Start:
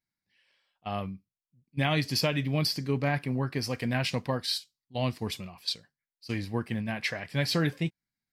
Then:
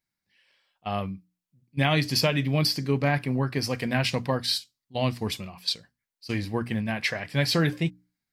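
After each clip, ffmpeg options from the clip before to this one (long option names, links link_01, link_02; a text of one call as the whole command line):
ffmpeg -i in.wav -af "bandreject=frequency=60:width_type=h:width=6,bandreject=frequency=120:width_type=h:width=6,bandreject=frequency=180:width_type=h:width=6,bandreject=frequency=240:width_type=h:width=6,bandreject=frequency=300:width_type=h:width=6,volume=4dB" out.wav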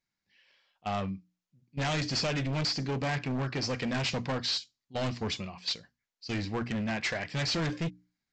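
ffmpeg -i in.wav -af "aresample=16000,asoftclip=type=hard:threshold=-27.5dB,aresample=44100,equalizer=frequency=110:width=1.4:gain=-2.5" out.wav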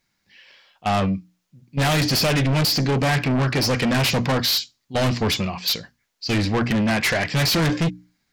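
ffmpeg -i in.wav -af "aeval=exprs='0.0794*sin(PI/2*2.24*val(0)/0.0794)':channel_layout=same,volume=4.5dB" out.wav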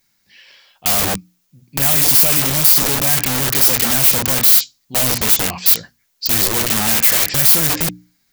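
ffmpeg -i in.wav -af "aeval=exprs='(mod(10*val(0)+1,2)-1)/10':channel_layout=same,aemphasis=mode=production:type=50kf,volume=2dB" out.wav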